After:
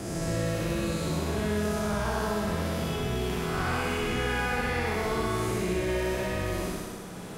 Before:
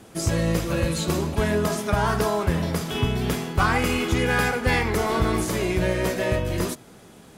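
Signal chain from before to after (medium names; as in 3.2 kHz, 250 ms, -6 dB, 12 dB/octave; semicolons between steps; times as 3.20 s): spectral blur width 276 ms; flutter echo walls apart 10.6 m, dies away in 0.97 s; three bands compressed up and down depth 70%; trim -6 dB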